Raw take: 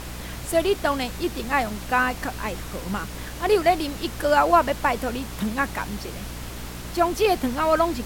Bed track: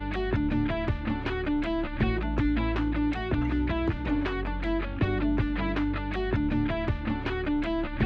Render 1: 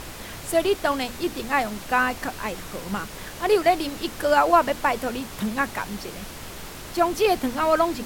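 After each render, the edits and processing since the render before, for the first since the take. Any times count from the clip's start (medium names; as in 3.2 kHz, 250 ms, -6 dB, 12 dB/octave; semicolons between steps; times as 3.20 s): hum notches 60/120/180/240/300 Hz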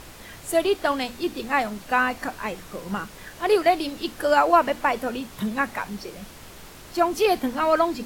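noise print and reduce 6 dB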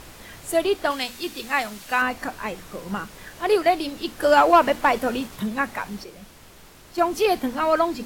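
0.90–2.02 s: tilt shelf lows -5.5 dB, about 1.4 kHz; 4.22–5.37 s: waveshaping leveller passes 1; 6.04–6.98 s: gain -4.5 dB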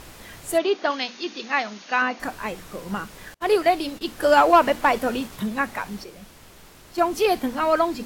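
0.58–2.20 s: brick-wall FIR band-pass 170–6800 Hz; 3.34–4.06 s: gate -39 dBFS, range -32 dB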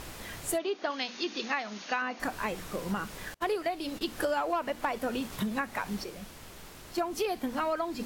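compression 8:1, threshold -28 dBFS, peak gain reduction 17 dB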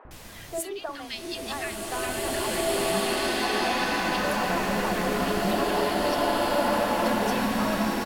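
three bands offset in time mids, lows, highs 50/110 ms, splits 410/1500 Hz; swelling reverb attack 2310 ms, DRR -9 dB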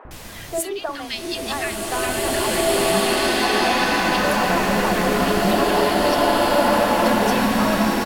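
trim +7 dB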